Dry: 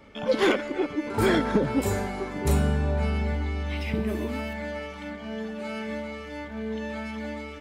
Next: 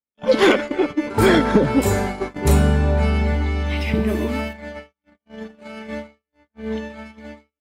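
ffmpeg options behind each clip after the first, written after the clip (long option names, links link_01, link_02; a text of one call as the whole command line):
ffmpeg -i in.wav -af "agate=range=-58dB:threshold=-31dB:ratio=16:detection=peak,volume=7.5dB" out.wav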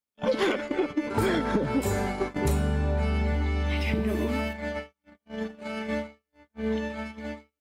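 ffmpeg -i in.wav -af "acompressor=threshold=-26dB:ratio=4,volume=1.5dB" out.wav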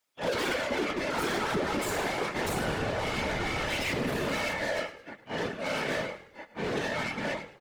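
ffmpeg -i in.wav -filter_complex "[0:a]asplit=2[link_01][link_02];[link_02]highpass=frequency=720:poles=1,volume=32dB,asoftclip=type=tanh:threshold=-13dB[link_03];[link_01][link_03]amix=inputs=2:normalize=0,lowpass=frequency=6400:poles=1,volume=-6dB,asplit=5[link_04][link_05][link_06][link_07][link_08];[link_05]adelay=104,afreqshift=-40,volume=-13.5dB[link_09];[link_06]adelay=208,afreqshift=-80,volume=-21.9dB[link_10];[link_07]adelay=312,afreqshift=-120,volume=-30.3dB[link_11];[link_08]adelay=416,afreqshift=-160,volume=-38.7dB[link_12];[link_04][link_09][link_10][link_11][link_12]amix=inputs=5:normalize=0,afftfilt=real='hypot(re,im)*cos(2*PI*random(0))':imag='hypot(re,im)*sin(2*PI*random(1))':win_size=512:overlap=0.75,volume=-5dB" out.wav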